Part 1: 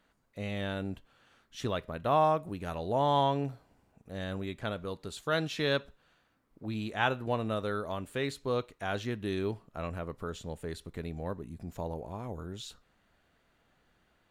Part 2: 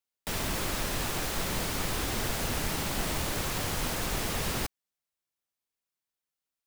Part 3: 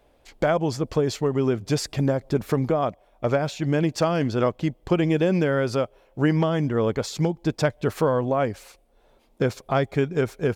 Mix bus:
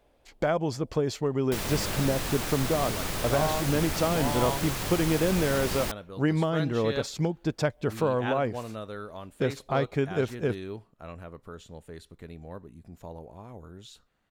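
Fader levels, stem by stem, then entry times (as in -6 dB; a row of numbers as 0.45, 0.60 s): -5.0, -0.5, -4.5 dB; 1.25, 1.25, 0.00 s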